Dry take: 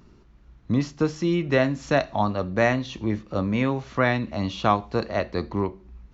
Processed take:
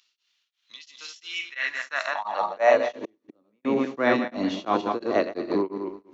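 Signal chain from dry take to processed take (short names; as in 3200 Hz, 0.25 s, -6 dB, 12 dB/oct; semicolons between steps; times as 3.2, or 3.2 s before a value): regenerating reverse delay 0.107 s, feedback 49%, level -5 dB; 3–3.65 flipped gate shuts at -19 dBFS, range -41 dB; high-pass sweep 3300 Hz -> 310 Hz, 1.16–3.3; beating tremolo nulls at 2.9 Hz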